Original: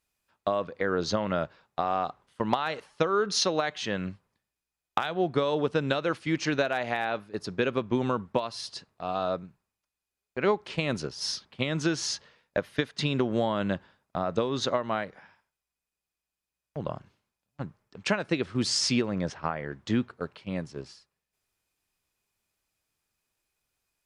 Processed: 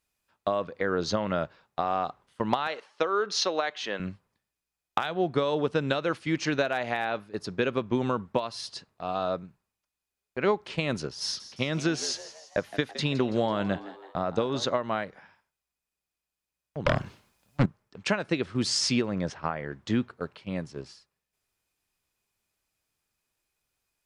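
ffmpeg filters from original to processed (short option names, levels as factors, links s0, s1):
-filter_complex "[0:a]asettb=1/sr,asplit=3[s0][s1][s2];[s0]atrim=end=2.674[s3];[s1]atrim=start=2.67:end=4,asetpts=PTS-STARTPTS,afade=t=in:d=0.004:c=qsin,afade=t=out:st=1.326:d=0.004:c=qsin,highpass=350,lowpass=6200[s4];[s2]atrim=start=3.996[s5];[s3][s4]acrossfade=d=0.004:c1=hsin:c2=qsin[s6];[s6][s5]acrossfade=d=0.004:c1=qsin:c2=hsin,asettb=1/sr,asplit=3[s7][s8][s9];[s7]atrim=end=11.234[s10];[s8]atrim=start=11.23:end=14.65,asetpts=PTS-STARTPTS,afade=t=in:d=0.004:c=qsin,afade=t=out:st=3.416:d=0.004:c=qsin,asplit=6[s11][s12][s13][s14][s15][s16];[s12]adelay=165,afreqshift=100,volume=0.178[s17];[s13]adelay=330,afreqshift=200,volume=0.0891[s18];[s14]adelay=495,afreqshift=300,volume=0.0447[s19];[s15]adelay=660,afreqshift=400,volume=0.0221[s20];[s16]adelay=825,afreqshift=500,volume=0.0111[s21];[s11][s17][s18][s19][s20][s21]amix=inputs=6:normalize=0,atrim=end_sample=150822[s22];[s9]atrim=start=14.646[s23];[s10][s22]acrossfade=d=0.004:c1=hsin:c2=qsin[s24];[s24][s23]acrossfade=d=0.004:c1=qsin:c2=hsin,asettb=1/sr,asplit=3[s25][s26][s27];[s25]atrim=end=16.864[s28];[s26]atrim=start=16.86:end=17.66,asetpts=PTS-STARTPTS,afade=t=in:d=0.004:c=qsin,afade=t=out:st=0.796:d=0.004:c=qsin,aeval=exprs='0.168*sin(PI/2*3.98*val(0)/0.168)':c=same[s29];[s27]atrim=start=17.656[s30];[s28][s29]acrossfade=d=0.004:c1=hsin:c2=qsin[s31];[s31][s30]acrossfade=d=0.004:c1=qsin:c2=hsin"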